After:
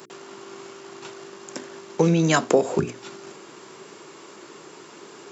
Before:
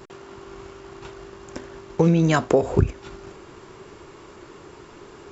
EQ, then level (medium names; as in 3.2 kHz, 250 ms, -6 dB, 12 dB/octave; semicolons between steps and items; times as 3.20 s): high-pass 160 Hz 24 dB/octave; treble shelf 4 kHz +10.5 dB; hum notches 60/120/180/240/300/360/420 Hz; 0.0 dB